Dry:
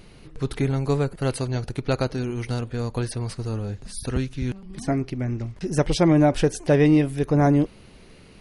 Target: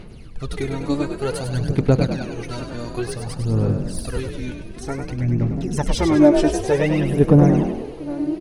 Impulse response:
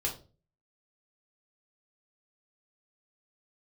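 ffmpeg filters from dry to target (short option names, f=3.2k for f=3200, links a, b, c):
-filter_complex "[0:a]asplit=2[a][b];[b]adelay=688,lowpass=f=1.4k:p=1,volume=-13dB,asplit=2[c][d];[d]adelay=688,lowpass=f=1.4k:p=1,volume=0.49,asplit=2[e][f];[f]adelay=688,lowpass=f=1.4k:p=1,volume=0.49,asplit=2[g][h];[h]adelay=688,lowpass=f=1.4k:p=1,volume=0.49,asplit=2[i][j];[j]adelay=688,lowpass=f=1.4k:p=1,volume=0.49[k];[c][e][g][i][k]amix=inputs=5:normalize=0[l];[a][l]amix=inputs=2:normalize=0,aphaser=in_gain=1:out_gain=1:delay=3.4:decay=0.74:speed=0.55:type=sinusoidal,asplit=2[m][n];[n]asplit=6[o][p][q][r][s][t];[o]adelay=100,afreqshift=40,volume=-7dB[u];[p]adelay=200,afreqshift=80,volume=-13dB[v];[q]adelay=300,afreqshift=120,volume=-19dB[w];[r]adelay=400,afreqshift=160,volume=-25.1dB[x];[s]adelay=500,afreqshift=200,volume=-31.1dB[y];[t]adelay=600,afreqshift=240,volume=-37.1dB[z];[u][v][w][x][y][z]amix=inputs=6:normalize=0[aa];[m][aa]amix=inputs=2:normalize=0,volume=-2.5dB"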